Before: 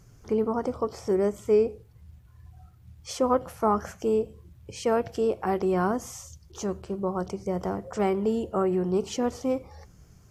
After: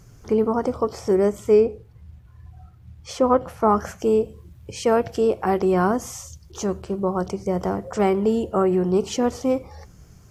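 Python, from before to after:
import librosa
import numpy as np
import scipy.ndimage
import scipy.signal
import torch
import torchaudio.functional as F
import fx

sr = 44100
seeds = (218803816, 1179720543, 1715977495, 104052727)

y = fx.high_shelf(x, sr, hz=5200.0, db=-9.5, at=(1.6, 3.69))
y = F.gain(torch.from_numpy(y), 5.5).numpy()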